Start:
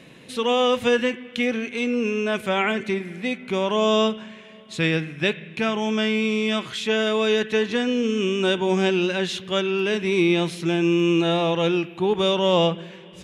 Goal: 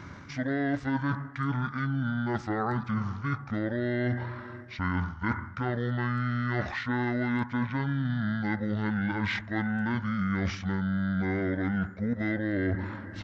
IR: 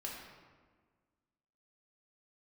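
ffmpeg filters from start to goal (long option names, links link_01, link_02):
-af "asetrate=24750,aresample=44100,atempo=1.7818,areverse,acompressor=threshold=-31dB:ratio=6,areverse,volume=4dB"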